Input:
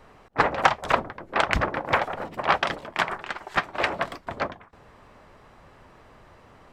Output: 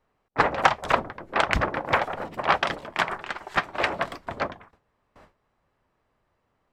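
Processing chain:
noise gate with hold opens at −40 dBFS

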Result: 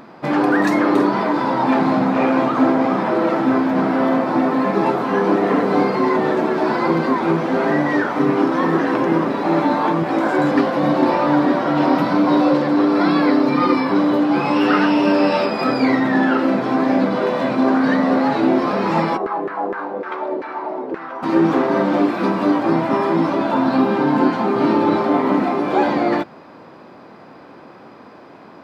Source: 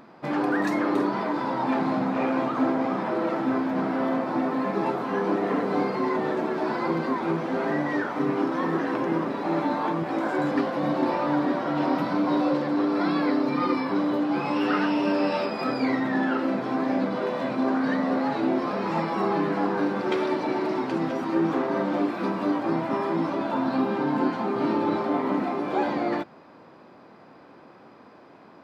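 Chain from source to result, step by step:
0:19.16–0:21.22: auto-filter band-pass saw down 5.4 Hz → 1.3 Hz 410–1,700 Hz
level +8.5 dB

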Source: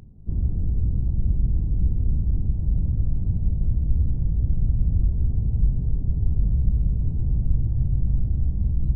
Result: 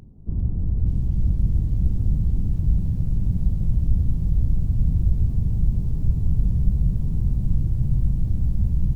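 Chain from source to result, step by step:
dynamic equaliser 380 Hz, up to −4 dB, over −39 dBFS, Q 0.71
on a send: echo with shifted repeats 400 ms, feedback 35%, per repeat −59 Hz, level −6 dB
on the sum: formants moved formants +3 semitones
feedback echo at a low word length 597 ms, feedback 55%, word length 8 bits, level −13 dB

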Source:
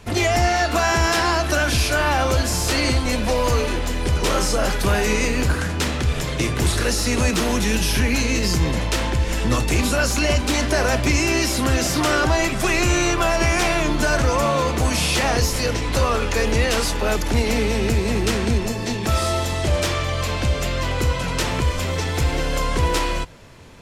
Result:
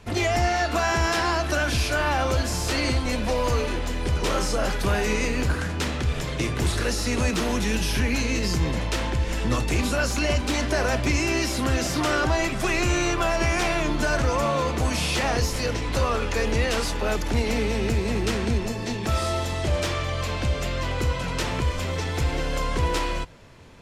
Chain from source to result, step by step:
high-shelf EQ 7,700 Hz −6 dB
level −4 dB

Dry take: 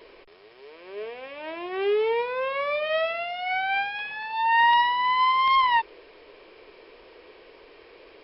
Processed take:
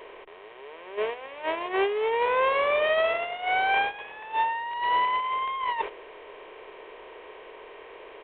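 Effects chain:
compressor on every frequency bin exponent 0.6
mains-hum notches 50/100/150/200/250/300/350 Hz
noise gate −27 dBFS, range −11 dB
high-shelf EQ 2,100 Hz −6 dB
compressor whose output falls as the input rises −24 dBFS, ratio −0.5
downsampling to 8,000 Hz

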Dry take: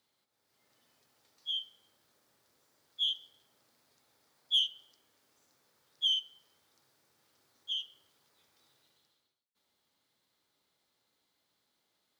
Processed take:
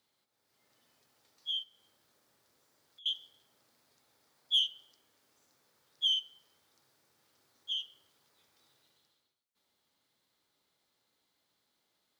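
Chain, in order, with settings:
0:01.63–0:03.06: downward compressor 6 to 1, threshold −59 dBFS, peak gain reduction 27.5 dB

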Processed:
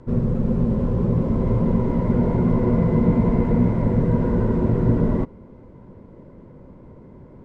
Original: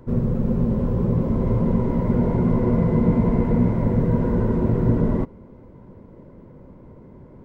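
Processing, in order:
elliptic low-pass filter 8,800 Hz, stop band 40 dB
level +1.5 dB

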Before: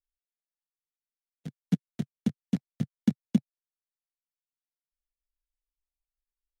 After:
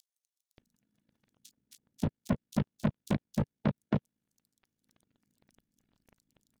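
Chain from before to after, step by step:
compressor on every frequency bin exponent 0.4
reversed playback
upward compression, threshold −51 dBFS
reversed playback
low-shelf EQ 110 Hz +10.5 dB
notch filter 740 Hz, Q 12
leveller curve on the samples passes 5
brickwall limiter −10.5 dBFS, peak gain reduction 4.5 dB
parametric band 170 Hz −6 dB 0.29 octaves
multiband delay without the direct sound highs, lows 580 ms, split 4,000 Hz
reverb reduction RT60 1.1 s
amplitude modulation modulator 55 Hz, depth 55%
level −7.5 dB

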